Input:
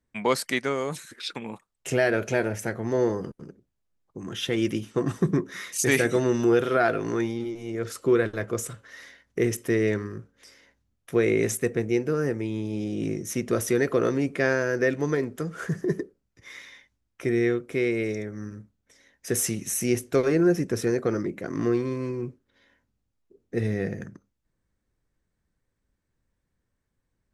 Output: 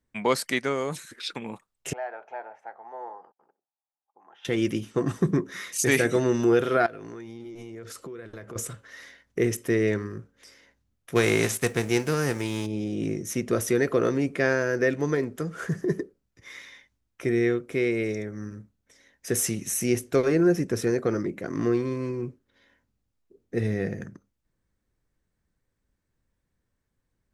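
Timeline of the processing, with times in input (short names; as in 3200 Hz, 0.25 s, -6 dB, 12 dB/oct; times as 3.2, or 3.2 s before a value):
1.93–4.45 ladder band-pass 860 Hz, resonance 80%
6.86–8.56 compressor 12:1, threshold -36 dBFS
11.15–12.65 spectral whitening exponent 0.6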